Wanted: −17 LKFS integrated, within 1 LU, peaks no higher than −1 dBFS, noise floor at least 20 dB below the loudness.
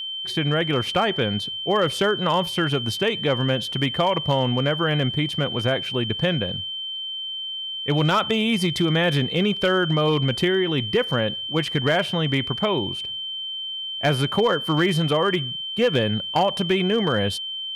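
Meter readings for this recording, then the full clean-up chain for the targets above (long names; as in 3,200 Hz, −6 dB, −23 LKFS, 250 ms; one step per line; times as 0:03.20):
share of clipped samples 0.3%; peaks flattened at −12.5 dBFS; interfering tone 3,100 Hz; level of the tone −28 dBFS; integrated loudness −22.5 LKFS; sample peak −12.5 dBFS; target loudness −17.0 LKFS
→ clipped peaks rebuilt −12.5 dBFS
notch filter 3,100 Hz, Q 30
level +5.5 dB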